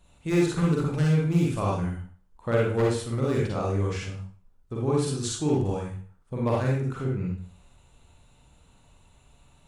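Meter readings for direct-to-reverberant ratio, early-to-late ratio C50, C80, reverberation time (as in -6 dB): -3.5 dB, 0.0 dB, 7.0 dB, 0.45 s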